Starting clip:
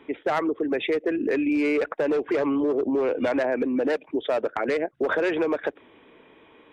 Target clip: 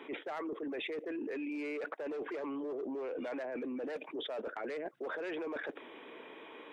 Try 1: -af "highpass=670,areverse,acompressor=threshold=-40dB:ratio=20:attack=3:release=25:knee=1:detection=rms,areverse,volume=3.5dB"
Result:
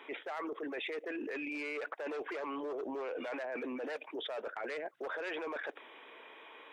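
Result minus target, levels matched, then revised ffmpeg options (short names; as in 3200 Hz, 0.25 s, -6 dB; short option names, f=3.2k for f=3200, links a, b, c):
250 Hz band -3.0 dB
-af "highpass=300,areverse,acompressor=threshold=-40dB:ratio=20:attack=3:release=25:knee=1:detection=rms,areverse,volume=3.5dB"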